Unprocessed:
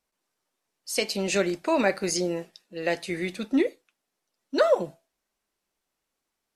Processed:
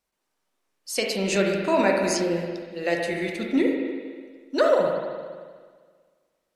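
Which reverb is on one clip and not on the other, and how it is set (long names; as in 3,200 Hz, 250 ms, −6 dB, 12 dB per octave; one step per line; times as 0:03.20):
spring reverb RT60 1.7 s, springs 41/58 ms, chirp 35 ms, DRR 0.5 dB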